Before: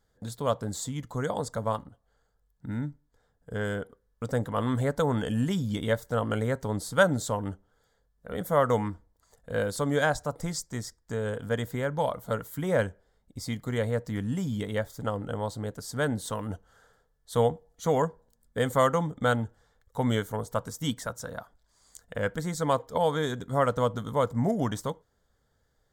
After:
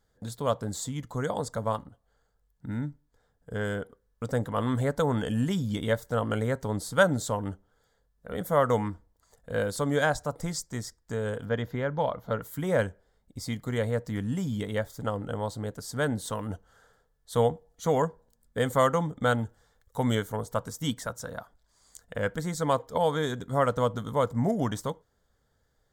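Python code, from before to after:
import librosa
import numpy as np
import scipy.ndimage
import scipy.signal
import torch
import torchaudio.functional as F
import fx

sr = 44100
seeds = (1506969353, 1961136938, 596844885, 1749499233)

y = fx.moving_average(x, sr, points=5, at=(11.45, 12.42))
y = fx.high_shelf(y, sr, hz=5300.0, db=5.5, at=(19.38, 20.15))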